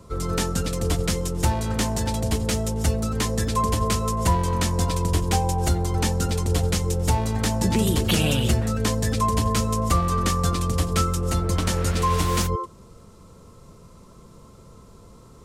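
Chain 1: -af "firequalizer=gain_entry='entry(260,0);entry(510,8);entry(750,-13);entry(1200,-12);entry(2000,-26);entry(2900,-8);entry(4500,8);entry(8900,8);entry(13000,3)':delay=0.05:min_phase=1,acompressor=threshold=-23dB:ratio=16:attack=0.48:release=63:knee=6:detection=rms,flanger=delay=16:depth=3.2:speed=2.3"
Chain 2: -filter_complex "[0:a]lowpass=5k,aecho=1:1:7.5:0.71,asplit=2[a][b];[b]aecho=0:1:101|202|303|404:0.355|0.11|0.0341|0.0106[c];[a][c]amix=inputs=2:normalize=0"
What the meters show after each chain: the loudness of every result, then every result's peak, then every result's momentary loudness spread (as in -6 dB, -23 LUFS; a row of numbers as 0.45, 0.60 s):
-33.0, -22.0 LUFS; -20.0, -6.5 dBFS; 18, 5 LU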